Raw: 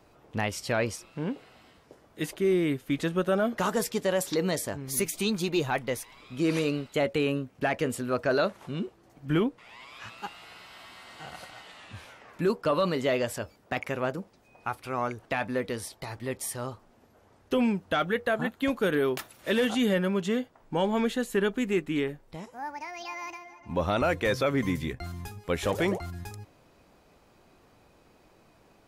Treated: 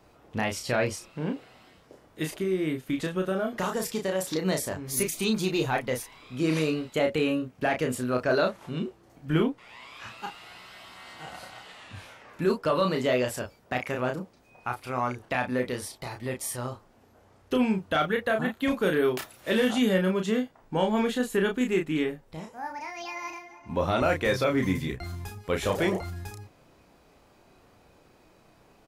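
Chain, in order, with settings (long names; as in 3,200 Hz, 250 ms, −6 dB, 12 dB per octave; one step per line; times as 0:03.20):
0:02.40–0:04.45: downward compressor 4 to 1, threshold −26 dBFS, peak gain reduction 5 dB
double-tracking delay 32 ms −4.5 dB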